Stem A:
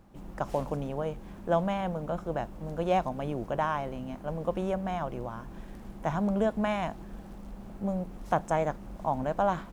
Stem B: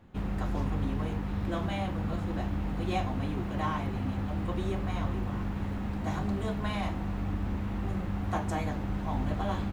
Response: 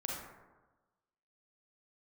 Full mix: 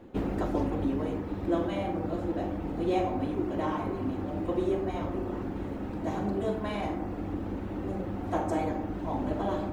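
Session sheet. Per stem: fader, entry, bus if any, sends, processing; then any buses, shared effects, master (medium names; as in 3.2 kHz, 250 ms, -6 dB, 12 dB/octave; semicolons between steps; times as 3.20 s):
-15.0 dB, 0.00 s, no send, none
-2.5 dB, 0.00 s, polarity flipped, send -6 dB, reverb removal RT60 0.81 s; FFT filter 150 Hz 0 dB, 460 Hz +12 dB, 1.1 kHz +3 dB; auto duck -11 dB, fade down 1.35 s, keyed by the first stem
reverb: on, RT60 1.2 s, pre-delay 32 ms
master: peaking EQ 310 Hz +6.5 dB 0.62 oct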